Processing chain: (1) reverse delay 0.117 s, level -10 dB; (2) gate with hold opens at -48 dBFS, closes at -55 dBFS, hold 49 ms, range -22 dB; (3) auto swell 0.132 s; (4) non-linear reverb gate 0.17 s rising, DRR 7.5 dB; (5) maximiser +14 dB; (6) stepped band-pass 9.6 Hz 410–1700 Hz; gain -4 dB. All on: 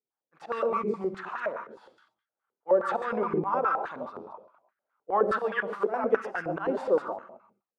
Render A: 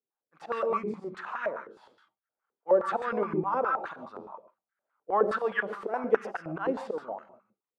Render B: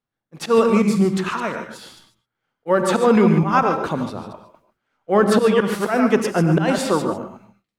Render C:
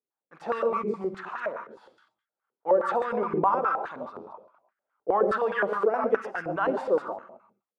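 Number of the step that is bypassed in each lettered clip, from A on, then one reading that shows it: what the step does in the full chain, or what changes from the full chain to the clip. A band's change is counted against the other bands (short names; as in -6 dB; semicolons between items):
1, crest factor change +2.0 dB; 6, 125 Hz band +13.5 dB; 3, 1 kHz band +1.5 dB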